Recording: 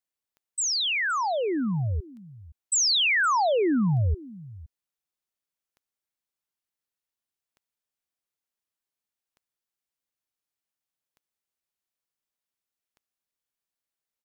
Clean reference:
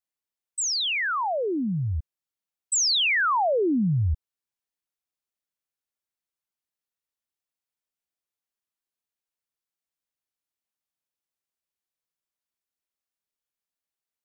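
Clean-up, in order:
click removal
echo removal 516 ms −19.5 dB

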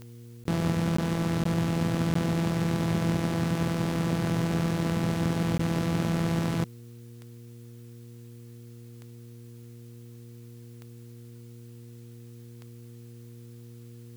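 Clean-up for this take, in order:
click removal
hum removal 118.2 Hz, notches 4
repair the gap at 0:00.44/0:00.97/0:01.44/0:02.14/0:05.58, 14 ms
downward expander −38 dBFS, range −21 dB

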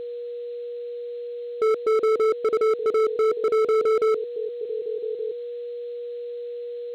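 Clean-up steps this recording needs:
clipped peaks rebuilt −18 dBFS
notch filter 480 Hz, Q 30
broadband denoise 30 dB, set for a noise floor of −33 dBFS
echo removal 1,172 ms −15.5 dB

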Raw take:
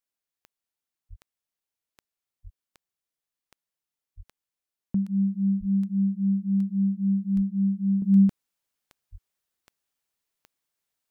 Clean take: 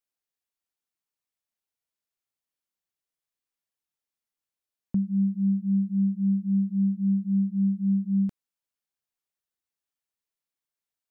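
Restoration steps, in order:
click removal
high-pass at the plosives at 0:01.09/0:02.43/0:04.16/0:05.59/0:07.35/0:09.11
level correction −7 dB, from 0:08.02

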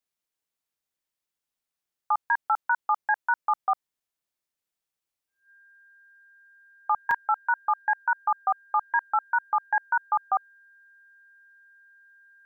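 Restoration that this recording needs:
notch filter 1,600 Hz, Q 30
repair the gap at 0:04.00/0:07.11, 3.5 ms

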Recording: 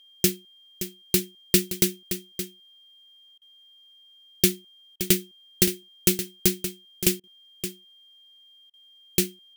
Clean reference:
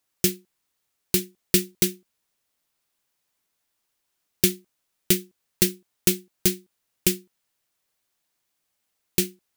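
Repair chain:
notch filter 3,200 Hz, Q 30
repair the gap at 0:03.38/0:04.96/0:07.20/0:08.70, 35 ms
echo removal 571 ms −10.5 dB

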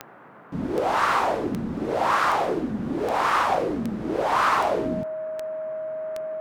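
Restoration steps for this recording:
clipped peaks rebuilt −13.5 dBFS
click removal
notch filter 630 Hz, Q 30
noise reduction from a noise print 30 dB

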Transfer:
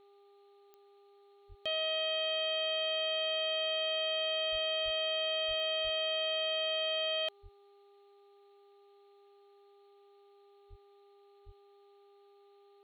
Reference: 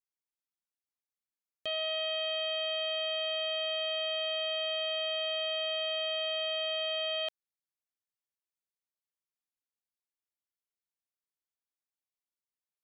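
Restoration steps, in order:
click removal
hum removal 402.3 Hz, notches 3
high-pass at the plosives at 0:01.48/0:04.51/0:04.84/0:05.47/0:05.83/0:07.42/0:10.69/0:11.45
broadband denoise 30 dB, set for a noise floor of −62 dBFS

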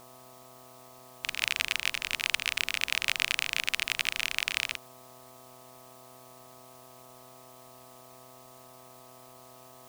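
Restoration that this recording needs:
hum removal 126.5 Hz, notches 10
notch filter 670 Hz, Q 30
noise reduction from a noise print 25 dB

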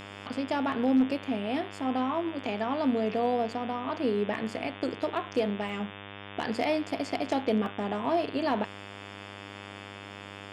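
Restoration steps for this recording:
clipped peaks rebuilt −17.5 dBFS
hum removal 100.2 Hz, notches 36
notch filter 2,600 Hz, Q 30
repair the gap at 0:05.69/0:07.66, 1.5 ms

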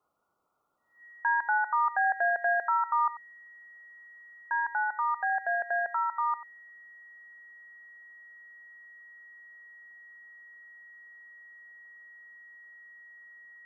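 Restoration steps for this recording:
notch filter 1,900 Hz, Q 30
noise reduction from a noise print 23 dB
echo removal 91 ms −15.5 dB

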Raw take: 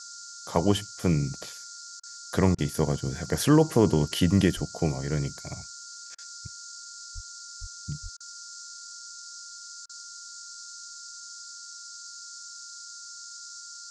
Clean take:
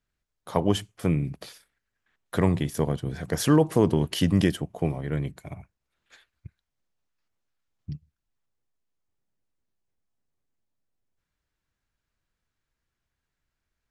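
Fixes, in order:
notch filter 1,400 Hz, Q 30
high-pass at the plosives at 0:04.55/0:07.14/0:07.60/0:08.02
repair the gap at 0:02.00/0:02.55/0:06.15/0:08.17/0:09.86, 32 ms
noise reduction from a noise print 30 dB

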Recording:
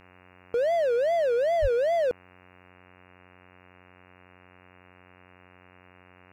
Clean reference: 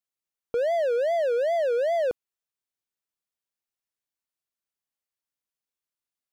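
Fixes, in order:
hum removal 90.9 Hz, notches 31
high-pass at the plosives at 0:01.61
level 0 dB, from 0:02.69 +3.5 dB

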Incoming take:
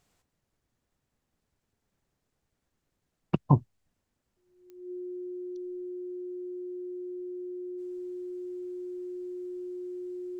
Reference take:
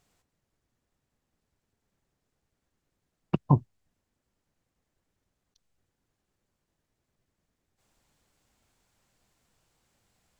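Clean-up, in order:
click removal
notch filter 360 Hz, Q 30

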